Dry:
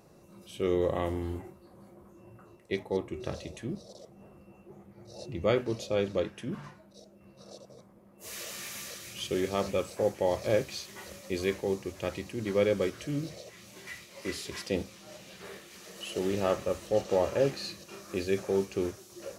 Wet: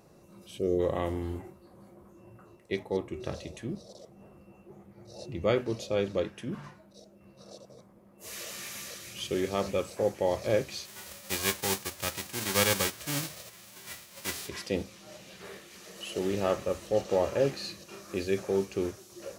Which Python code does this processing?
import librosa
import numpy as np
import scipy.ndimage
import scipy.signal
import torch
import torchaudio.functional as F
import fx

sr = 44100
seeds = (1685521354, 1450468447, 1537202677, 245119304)

y = fx.spec_box(x, sr, start_s=0.59, length_s=0.21, low_hz=740.0, high_hz=4000.0, gain_db=-17)
y = fx.envelope_flatten(y, sr, power=0.3, at=(10.85, 14.47), fade=0.02)